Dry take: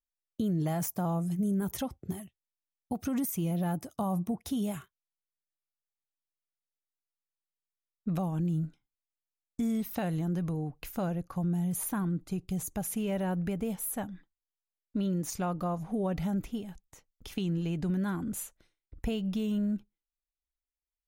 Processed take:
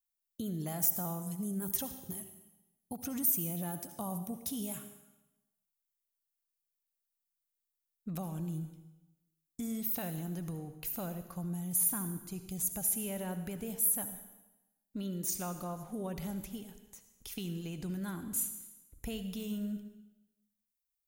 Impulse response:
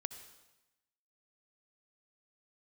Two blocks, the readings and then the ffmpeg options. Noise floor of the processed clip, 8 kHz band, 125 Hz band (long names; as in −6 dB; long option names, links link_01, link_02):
below −85 dBFS, +5.5 dB, −8.0 dB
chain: -filter_complex "[0:a]aemphasis=mode=production:type=75kf[link_01];[1:a]atrim=start_sample=2205[link_02];[link_01][link_02]afir=irnorm=-1:irlink=0,volume=-6dB"